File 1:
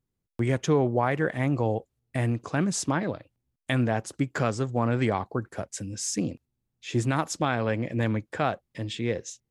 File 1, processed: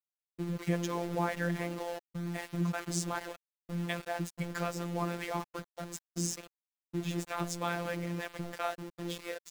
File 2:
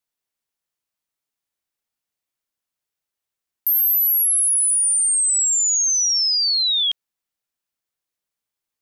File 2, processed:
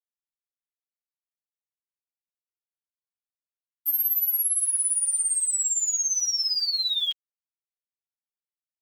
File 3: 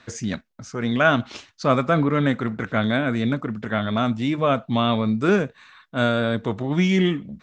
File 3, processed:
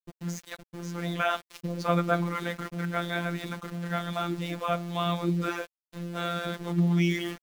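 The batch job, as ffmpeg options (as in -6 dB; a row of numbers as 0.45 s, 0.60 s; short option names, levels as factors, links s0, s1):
-filter_complex "[0:a]acrossover=split=400[s0][s1];[s1]adelay=200[s2];[s0][s2]amix=inputs=2:normalize=0,aeval=exprs='val(0)*gte(abs(val(0)),0.0211)':c=same,afftfilt=real='hypot(re,im)*cos(PI*b)':imag='0':win_size=1024:overlap=0.75,volume=0.708"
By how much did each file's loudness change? -8.5 LU, -7.0 LU, -8.0 LU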